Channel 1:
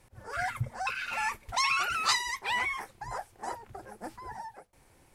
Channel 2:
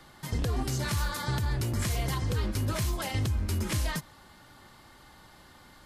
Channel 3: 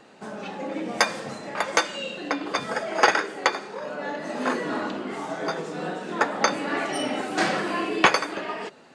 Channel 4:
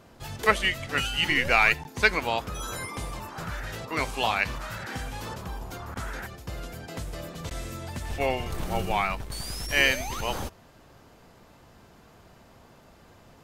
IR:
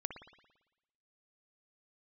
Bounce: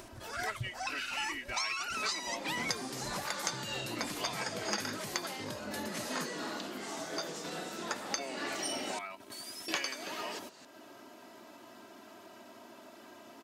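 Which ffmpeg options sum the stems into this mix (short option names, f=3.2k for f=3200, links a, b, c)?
-filter_complex "[0:a]volume=-5.5dB[a];[1:a]adelay=2250,volume=0.5dB[b];[2:a]highshelf=f=4.4k:g=11,adelay=1700,volume=-12dB,asplit=3[c][d][e];[c]atrim=end=8.99,asetpts=PTS-STARTPTS,afade=t=out:st=8.986:d=0.004:c=hsin[f];[d]atrim=start=8.99:end=9.68,asetpts=PTS-STARTPTS,volume=0[g];[e]atrim=start=9.68,asetpts=PTS-STARTPTS,afade=t=in:d=0.004:c=hsin[h];[f][g][h]concat=n=3:v=0:a=1[i];[3:a]aecho=1:1:3.1:0.94,volume=-10dB[j];[a][i]amix=inputs=2:normalize=0,equalizer=f=5.5k:t=o:w=1.4:g=10,acompressor=threshold=-33dB:ratio=6,volume=0dB[k];[b][j]amix=inputs=2:normalize=0,highpass=f=170:w=0.5412,highpass=f=170:w=1.3066,acompressor=threshold=-41dB:ratio=3,volume=0dB[l];[k][l]amix=inputs=2:normalize=0,acompressor=mode=upward:threshold=-42dB:ratio=2.5"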